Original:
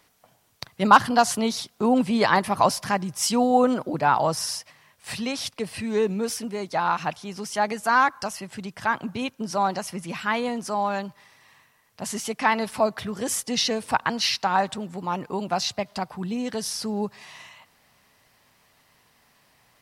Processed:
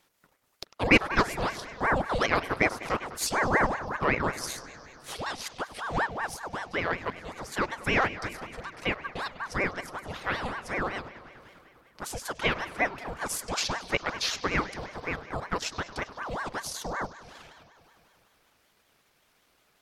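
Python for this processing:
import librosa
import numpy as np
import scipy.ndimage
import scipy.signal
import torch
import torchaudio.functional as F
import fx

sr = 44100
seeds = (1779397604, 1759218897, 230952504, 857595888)

y = fx.transient(x, sr, attack_db=1, sustain_db=-11)
y = fx.echo_bbd(y, sr, ms=100, stages=4096, feedback_pct=80, wet_db=-16.5)
y = fx.ring_lfo(y, sr, carrier_hz=820.0, swing_pct=70, hz=5.3)
y = y * librosa.db_to_amplitude(-3.0)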